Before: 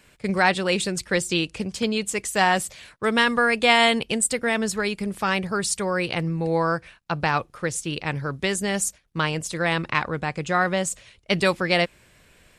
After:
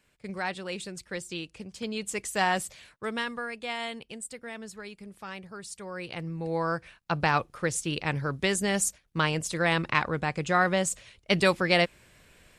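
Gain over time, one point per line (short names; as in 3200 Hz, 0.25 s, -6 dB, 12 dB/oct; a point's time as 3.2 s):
1.69 s -13 dB
2.13 s -6 dB
2.74 s -6 dB
3.58 s -17 dB
5.67 s -17 dB
6.24 s -10 dB
7.13 s -2 dB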